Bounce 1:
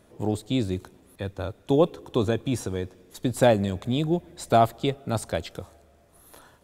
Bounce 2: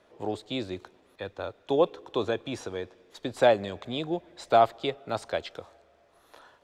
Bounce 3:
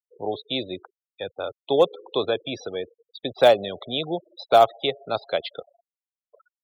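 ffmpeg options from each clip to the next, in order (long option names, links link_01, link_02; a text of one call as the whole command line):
ffmpeg -i in.wav -filter_complex "[0:a]acrossover=split=370 5600:gain=0.2 1 0.112[link_01][link_02][link_03];[link_01][link_02][link_03]amix=inputs=3:normalize=0" out.wav
ffmpeg -i in.wav -af "highpass=160,equalizer=frequency=220:width_type=q:width=4:gain=-6,equalizer=frequency=320:width_type=q:width=4:gain=-6,equalizer=frequency=960:width_type=q:width=4:gain=-5,equalizer=frequency=1700:width_type=q:width=4:gain=-5,equalizer=frequency=3600:width_type=q:width=4:gain=4,lowpass=frequency=5800:width=0.5412,lowpass=frequency=5800:width=1.3066,acrusher=bits=5:mode=log:mix=0:aa=0.000001,afftfilt=real='re*gte(hypot(re,im),0.0112)':imag='im*gte(hypot(re,im),0.0112)':win_size=1024:overlap=0.75,volume=6dB" out.wav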